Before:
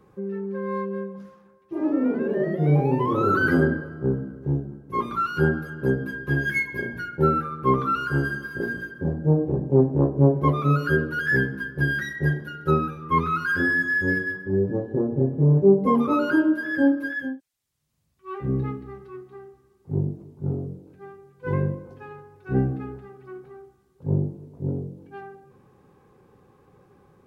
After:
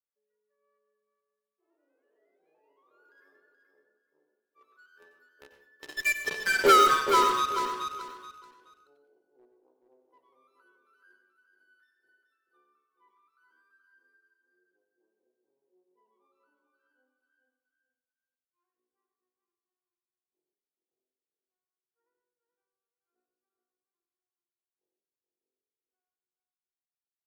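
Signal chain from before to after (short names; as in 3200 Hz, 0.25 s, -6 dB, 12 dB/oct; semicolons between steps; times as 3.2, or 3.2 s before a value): Doppler pass-by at 6.71, 26 m/s, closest 1.3 m; HPF 380 Hz 24 dB/oct; tilt +2 dB/oct; sample leveller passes 1; in parallel at -5.5 dB: fuzz box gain 40 dB, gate -45 dBFS; on the sum: feedback echo 0.428 s, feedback 24%, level -6.5 dB; reverb RT60 0.40 s, pre-delay 86 ms, DRR 7 dB; gain -2.5 dB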